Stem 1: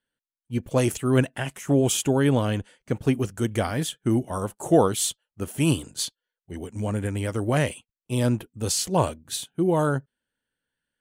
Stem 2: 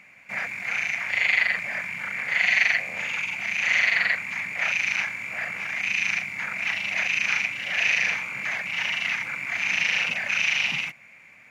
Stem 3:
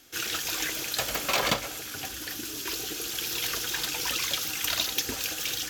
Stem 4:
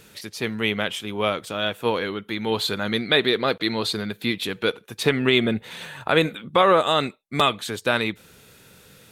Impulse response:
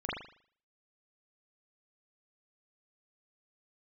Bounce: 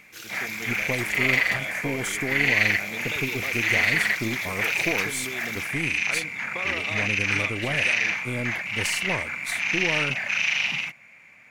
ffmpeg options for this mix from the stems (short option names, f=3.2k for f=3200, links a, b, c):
-filter_complex "[0:a]acompressor=threshold=-22dB:ratio=6,aeval=exprs='0.211*(cos(1*acos(clip(val(0)/0.211,-1,1)))-cos(1*PI/2))+0.0531*(cos(2*acos(clip(val(0)/0.211,-1,1)))-cos(2*PI/2))':c=same,adelay=150,volume=-4.5dB[a];[1:a]volume=-0.5dB[b];[2:a]volume=-10dB[c];[3:a]acompressor=threshold=-20dB:ratio=6,volume=-13dB[d];[a][b][c][d]amix=inputs=4:normalize=0"